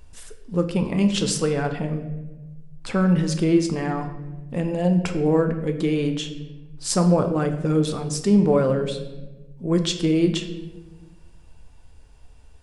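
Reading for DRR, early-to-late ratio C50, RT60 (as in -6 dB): 6.0 dB, 9.5 dB, 1.1 s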